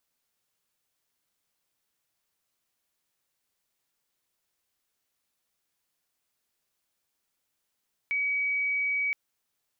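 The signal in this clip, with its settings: tone sine 2.27 kHz -25 dBFS 1.02 s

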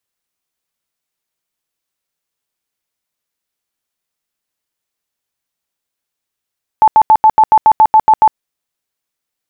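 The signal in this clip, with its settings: tone bursts 871 Hz, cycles 50, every 0.14 s, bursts 11, -3 dBFS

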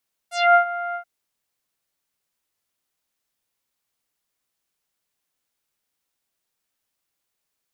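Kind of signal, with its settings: synth note saw F5 24 dB/octave, low-pass 1.6 kHz, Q 2.3, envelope 3 oct, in 0.17 s, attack 236 ms, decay 0.10 s, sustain -15.5 dB, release 0.09 s, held 0.64 s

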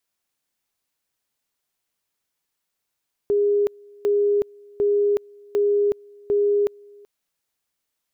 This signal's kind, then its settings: two-level tone 409 Hz -16 dBFS, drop 27.5 dB, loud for 0.37 s, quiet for 0.38 s, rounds 5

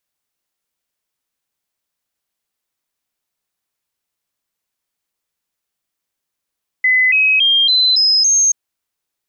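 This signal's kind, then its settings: stepped sine 2.02 kHz up, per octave 3, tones 6, 0.28 s, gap 0.00 s -9.5 dBFS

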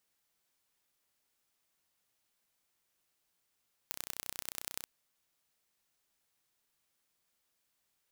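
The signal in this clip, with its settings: pulse train 31.2 per s, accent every 3, -9 dBFS 0.96 s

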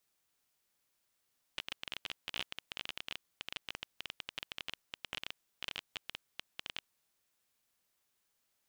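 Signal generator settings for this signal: random clicks 17 per s -21.5 dBFS 5.66 s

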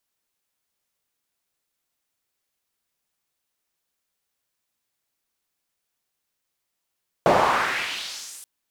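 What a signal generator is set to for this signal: swept filtered noise pink, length 1.18 s bandpass, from 570 Hz, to 10 kHz, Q 2, exponential, gain ramp -25.5 dB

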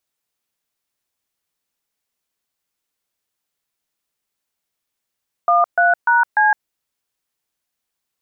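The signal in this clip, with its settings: DTMF "13#C", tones 162 ms, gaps 134 ms, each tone -13.5 dBFS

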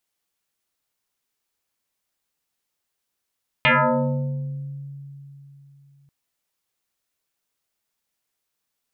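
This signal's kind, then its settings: FM tone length 2.44 s, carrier 140 Hz, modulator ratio 2.71, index 7.8, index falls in 1.45 s exponential, decay 3.55 s, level -12.5 dB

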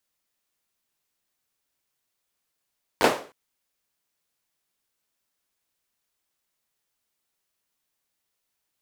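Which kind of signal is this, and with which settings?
hand clap length 0.31 s, apart 10 ms, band 510 Hz, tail 0.39 s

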